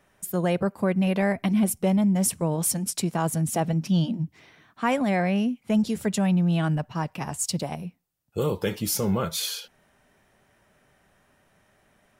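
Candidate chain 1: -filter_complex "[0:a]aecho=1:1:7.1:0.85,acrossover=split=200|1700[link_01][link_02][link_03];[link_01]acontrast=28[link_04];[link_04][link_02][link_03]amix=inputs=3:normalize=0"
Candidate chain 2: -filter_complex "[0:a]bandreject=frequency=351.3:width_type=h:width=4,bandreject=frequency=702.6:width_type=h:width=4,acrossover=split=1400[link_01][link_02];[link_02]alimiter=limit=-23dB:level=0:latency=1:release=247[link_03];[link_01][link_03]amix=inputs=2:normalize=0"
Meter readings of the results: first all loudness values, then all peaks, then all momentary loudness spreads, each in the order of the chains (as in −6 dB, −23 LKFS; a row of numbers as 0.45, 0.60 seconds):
−21.5, −26.0 LKFS; −8.5, −13.0 dBFS; 9, 9 LU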